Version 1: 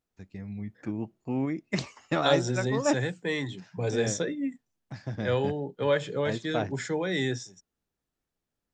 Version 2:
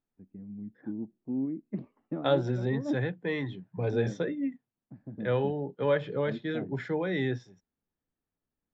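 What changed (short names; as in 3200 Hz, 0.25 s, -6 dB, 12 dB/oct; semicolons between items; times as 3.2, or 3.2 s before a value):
first voice: add band-pass 250 Hz, Q 2.1; master: add air absorption 330 m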